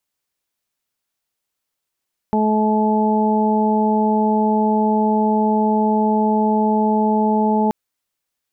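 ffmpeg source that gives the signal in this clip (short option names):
-f lavfi -i "aevalsrc='0.15*sin(2*PI*215*t)+0.0841*sin(2*PI*430*t)+0.0531*sin(2*PI*645*t)+0.112*sin(2*PI*860*t)':d=5.38:s=44100"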